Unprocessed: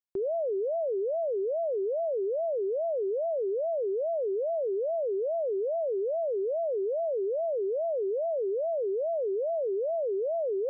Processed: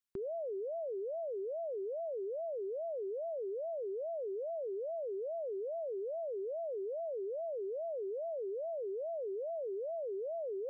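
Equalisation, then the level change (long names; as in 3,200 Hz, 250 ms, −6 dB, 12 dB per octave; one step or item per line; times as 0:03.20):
flat-topped bell 520 Hz −10.5 dB
+1.0 dB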